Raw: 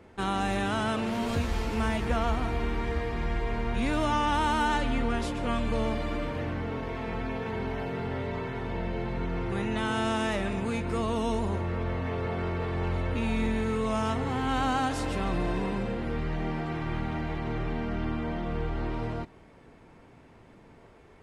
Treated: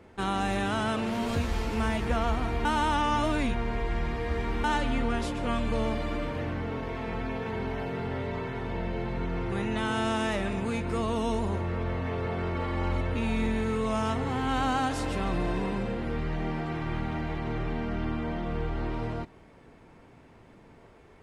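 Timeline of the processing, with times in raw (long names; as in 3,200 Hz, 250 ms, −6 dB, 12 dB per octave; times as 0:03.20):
0:02.65–0:04.64: reverse
0:12.55–0:13.01: comb filter 3.6 ms, depth 72%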